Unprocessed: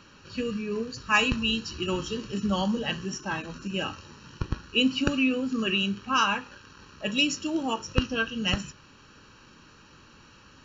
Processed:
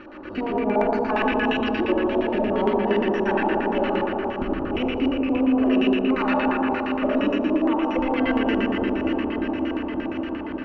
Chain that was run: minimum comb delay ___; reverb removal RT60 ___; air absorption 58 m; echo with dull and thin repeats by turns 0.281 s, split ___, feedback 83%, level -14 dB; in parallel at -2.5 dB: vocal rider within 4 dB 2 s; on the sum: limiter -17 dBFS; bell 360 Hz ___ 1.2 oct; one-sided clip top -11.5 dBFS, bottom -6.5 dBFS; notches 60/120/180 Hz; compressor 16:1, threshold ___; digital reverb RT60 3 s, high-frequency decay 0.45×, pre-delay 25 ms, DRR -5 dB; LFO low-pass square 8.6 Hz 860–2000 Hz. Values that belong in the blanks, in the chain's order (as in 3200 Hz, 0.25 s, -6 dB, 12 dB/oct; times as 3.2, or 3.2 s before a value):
3.4 ms, 1.9 s, 1600 Hz, +13 dB, -25 dBFS